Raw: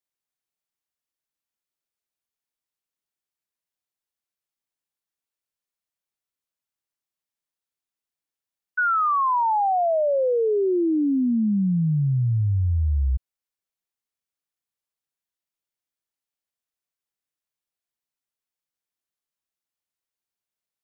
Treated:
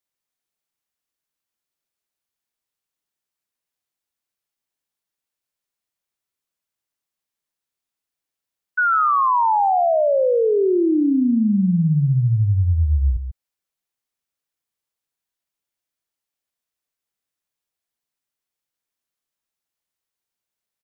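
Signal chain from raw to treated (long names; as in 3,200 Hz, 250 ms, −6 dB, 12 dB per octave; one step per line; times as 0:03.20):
single-tap delay 142 ms −10 dB
level +3.5 dB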